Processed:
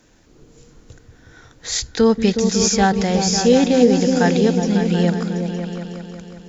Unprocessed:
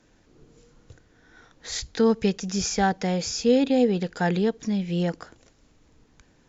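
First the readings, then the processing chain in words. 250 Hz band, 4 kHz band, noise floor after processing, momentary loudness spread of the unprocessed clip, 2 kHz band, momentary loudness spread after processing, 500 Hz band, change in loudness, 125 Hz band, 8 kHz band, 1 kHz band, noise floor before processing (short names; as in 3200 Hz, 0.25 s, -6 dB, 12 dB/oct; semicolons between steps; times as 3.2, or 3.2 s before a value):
+8.0 dB, +9.0 dB, -51 dBFS, 11 LU, +7.0 dB, 15 LU, +7.5 dB, +7.5 dB, +8.5 dB, n/a, +7.0 dB, -61 dBFS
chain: high shelf 6900 Hz +9.5 dB; on a send: repeats that get brighter 0.183 s, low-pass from 200 Hz, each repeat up 2 oct, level -3 dB; on the sum: gain +5.5 dB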